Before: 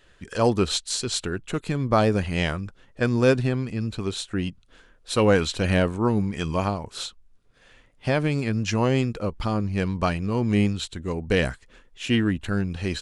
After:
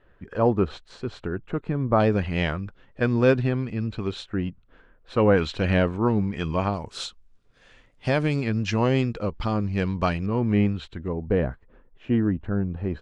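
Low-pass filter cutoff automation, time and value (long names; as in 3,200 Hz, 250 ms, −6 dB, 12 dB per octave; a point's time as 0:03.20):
1,400 Hz
from 0:02.00 3,200 Hz
from 0:04.26 1,800 Hz
from 0:05.37 3,300 Hz
from 0:06.74 7,500 Hz
from 0:08.36 4,700 Hz
from 0:10.26 2,200 Hz
from 0:11.08 1,000 Hz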